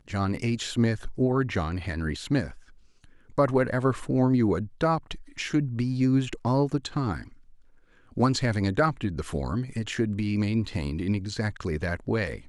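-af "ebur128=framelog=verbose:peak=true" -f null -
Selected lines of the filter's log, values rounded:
Integrated loudness:
  I:         -27.1 LUFS
  Threshold: -37.6 LUFS
Loudness range:
  LRA:         2.9 LU
  Threshold: -47.5 LUFS
  LRA low:   -28.8 LUFS
  LRA high:  -25.9 LUFS
True peak:
  Peak:      -10.7 dBFS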